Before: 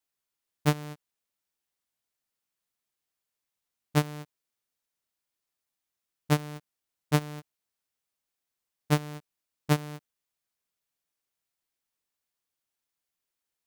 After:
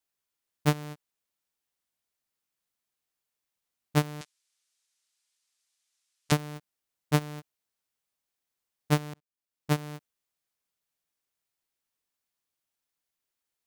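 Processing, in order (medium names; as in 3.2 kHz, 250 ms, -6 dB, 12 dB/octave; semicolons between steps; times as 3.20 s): 4.21–6.32 s: frequency weighting ITU-R 468; 9.14–9.88 s: fade in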